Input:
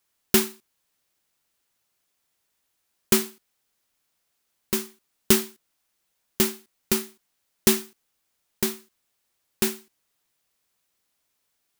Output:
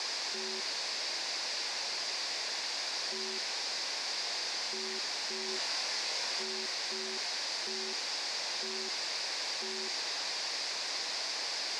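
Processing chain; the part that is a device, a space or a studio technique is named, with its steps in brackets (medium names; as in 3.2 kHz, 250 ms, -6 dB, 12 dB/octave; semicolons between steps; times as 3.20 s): home computer beeper (one-bit comparator; cabinet simulation 510–5600 Hz, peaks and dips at 1.3 kHz -8 dB, 3.1 kHz -7 dB, 4.8 kHz +8 dB); 5.46–6.43 s: doubling 24 ms -4 dB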